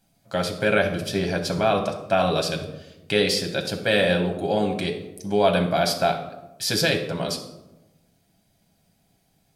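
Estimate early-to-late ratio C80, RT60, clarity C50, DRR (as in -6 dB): 11.0 dB, 1.0 s, 8.5 dB, 2.5 dB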